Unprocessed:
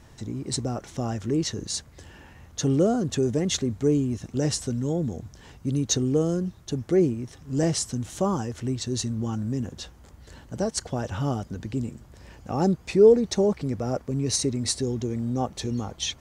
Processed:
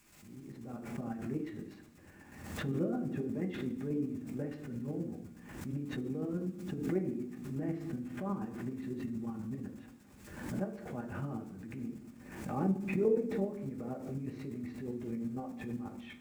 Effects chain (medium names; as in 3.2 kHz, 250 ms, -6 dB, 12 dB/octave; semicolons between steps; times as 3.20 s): fade-in on the opening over 1.22 s; high-pass 490 Hz 6 dB/octave; gate with hold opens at -48 dBFS; low-pass 2.4 kHz 24 dB/octave; tilt EQ -2.5 dB/octave; in parallel at +1.5 dB: compression, threshold -38 dBFS, peak gain reduction 24 dB; on the sum: added noise pink -56 dBFS; square tremolo 8.2 Hz, depth 60%, duty 25%; reverberation RT60 0.90 s, pre-delay 3 ms, DRR 2 dB; swell ahead of each attack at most 55 dB/s; trim -8 dB